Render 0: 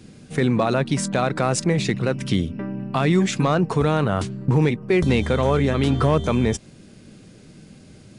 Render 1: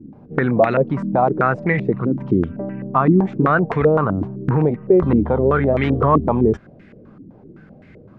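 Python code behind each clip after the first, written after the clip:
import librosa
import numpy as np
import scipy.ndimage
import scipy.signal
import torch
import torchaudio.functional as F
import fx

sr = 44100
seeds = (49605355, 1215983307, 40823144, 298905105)

y = fx.filter_held_lowpass(x, sr, hz=7.8, low_hz=290.0, high_hz=2000.0)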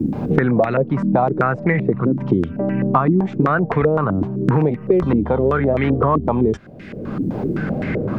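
y = fx.band_squash(x, sr, depth_pct=100)
y = y * librosa.db_to_amplitude(-1.0)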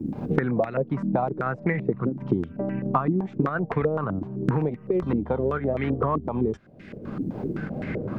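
y = fx.volume_shaper(x, sr, bpm=86, per_beat=1, depth_db=-4, release_ms=63.0, shape='slow start')
y = fx.transient(y, sr, attack_db=3, sustain_db=-4)
y = y * librosa.db_to_amplitude(-8.5)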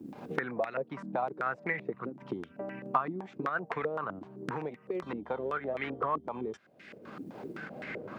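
y = fx.highpass(x, sr, hz=1300.0, slope=6)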